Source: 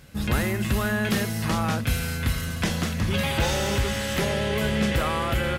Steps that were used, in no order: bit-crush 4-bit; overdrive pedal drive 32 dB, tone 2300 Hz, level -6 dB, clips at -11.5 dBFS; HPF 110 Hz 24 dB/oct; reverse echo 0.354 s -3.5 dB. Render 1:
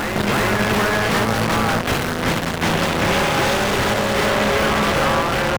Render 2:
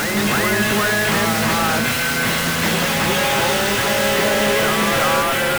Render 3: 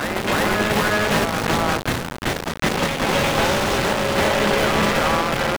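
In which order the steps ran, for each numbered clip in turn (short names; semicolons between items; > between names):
bit-crush > HPF > overdrive pedal > reverse echo; HPF > overdrive pedal > reverse echo > bit-crush; HPF > bit-crush > overdrive pedal > reverse echo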